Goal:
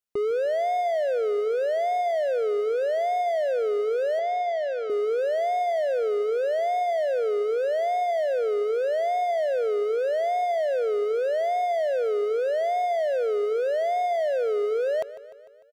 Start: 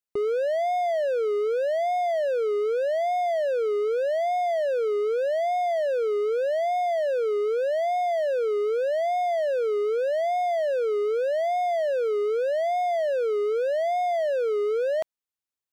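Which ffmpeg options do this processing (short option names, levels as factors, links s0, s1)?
-filter_complex "[0:a]asettb=1/sr,asplit=3[s0][s1][s2];[s0]atrim=end=4.194[s3];[s1]atrim=start=4.19:end=4.9,asetpts=PTS-STARTPTS,afade=t=in:d=0.004:c=qsin,afade=t=out:st=0.706:d=0.004:c=qsin,highpass=560,lowpass=5300[s4];[s2]atrim=start=4.896[s5];[s3][s4]acrossfade=d=0.004:c1=hsin:c2=qsin[s6];[s6][s5]acrossfade=d=0.004:c1=qsin:c2=hsin,aecho=1:1:150|300|450|600|750|900:0.15|0.0883|0.0521|0.0307|0.0181|0.0107"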